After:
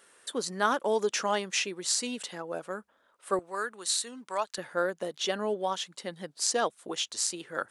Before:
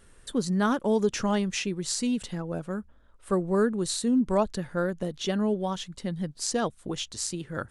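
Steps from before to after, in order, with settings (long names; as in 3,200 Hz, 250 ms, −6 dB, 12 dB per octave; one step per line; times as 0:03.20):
high-pass filter 510 Hz 12 dB per octave, from 0:03.39 1,100 Hz, from 0:04.58 480 Hz
level +2.5 dB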